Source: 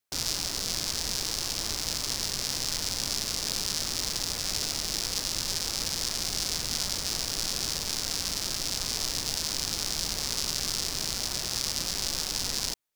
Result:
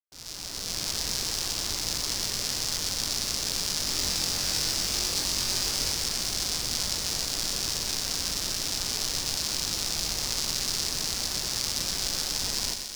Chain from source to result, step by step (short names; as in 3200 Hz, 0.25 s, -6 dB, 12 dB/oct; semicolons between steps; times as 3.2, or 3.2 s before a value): opening faded in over 0.89 s; 3.83–5.92 flutter echo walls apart 3.8 m, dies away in 0.28 s; lo-fi delay 0.124 s, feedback 80%, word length 7-bit, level -7 dB